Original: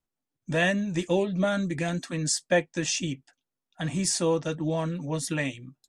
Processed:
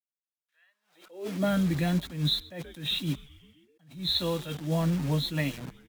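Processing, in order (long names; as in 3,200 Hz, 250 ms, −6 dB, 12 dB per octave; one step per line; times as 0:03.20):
hearing-aid frequency compression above 3,200 Hz 4 to 1
0:04.14–0:04.67: tilt shelving filter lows −5.5 dB, about 1,500 Hz
in parallel at −1 dB: downward compressor 5 to 1, threshold −31 dBFS, peak gain reduction 12.5 dB
on the sum: bit reduction 6 bits
high-pass filter sweep 2,400 Hz → 150 Hz, 0:00.39–0:01.60
on a send: echo with shifted repeats 130 ms, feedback 63%, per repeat −120 Hz, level −23 dB
on the sum: pitch vibrato 1.7 Hz 47 cents
level that may rise only so fast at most 130 dB per second
level −6 dB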